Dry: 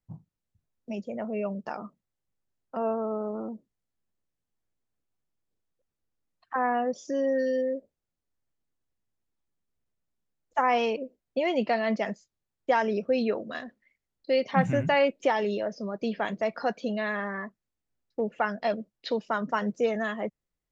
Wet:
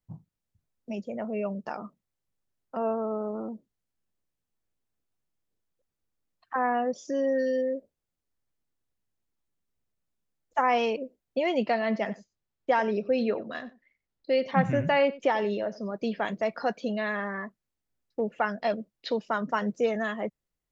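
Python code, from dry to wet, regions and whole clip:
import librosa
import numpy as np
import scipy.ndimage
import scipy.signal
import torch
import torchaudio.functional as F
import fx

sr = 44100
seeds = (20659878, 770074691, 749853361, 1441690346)

y = fx.chain(x, sr, fx.air_absorb(metres=73.0),
    fx.echo_single(ms=92, db=-18.5), at=(11.72, 15.92))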